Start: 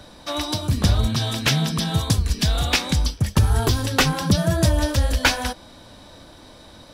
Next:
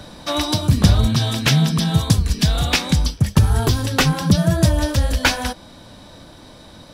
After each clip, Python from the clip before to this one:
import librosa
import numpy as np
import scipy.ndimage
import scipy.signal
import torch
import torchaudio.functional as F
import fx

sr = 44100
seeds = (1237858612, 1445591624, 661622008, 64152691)

y = fx.peak_eq(x, sr, hz=160.0, db=5.0, octaves=0.99)
y = fx.rider(y, sr, range_db=5, speed_s=2.0)
y = y * 10.0 ** (1.5 / 20.0)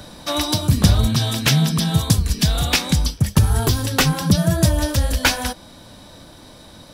y = fx.high_shelf(x, sr, hz=8600.0, db=9.0)
y = y * 10.0 ** (-1.0 / 20.0)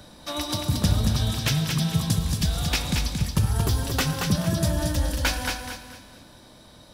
y = fx.echo_feedback(x, sr, ms=227, feedback_pct=32, wet_db=-4.5)
y = fx.rev_plate(y, sr, seeds[0], rt60_s=1.8, hf_ratio=1.0, predelay_ms=0, drr_db=11.0)
y = y * 10.0 ** (-8.5 / 20.0)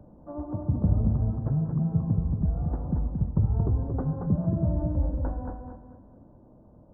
y = scipy.ndimage.gaussian_filter1d(x, 11.0, mode='constant')
y = y * 10.0 ** (-1.0 / 20.0)